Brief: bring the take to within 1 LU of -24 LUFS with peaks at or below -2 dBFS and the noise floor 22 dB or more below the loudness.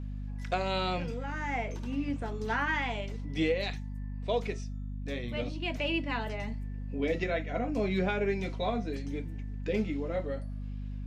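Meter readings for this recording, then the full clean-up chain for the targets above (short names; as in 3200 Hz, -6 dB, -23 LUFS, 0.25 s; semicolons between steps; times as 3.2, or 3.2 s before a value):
hum 50 Hz; harmonics up to 250 Hz; hum level -35 dBFS; loudness -33.5 LUFS; peak -18.0 dBFS; loudness target -24.0 LUFS
-> notches 50/100/150/200/250 Hz; gain +9.5 dB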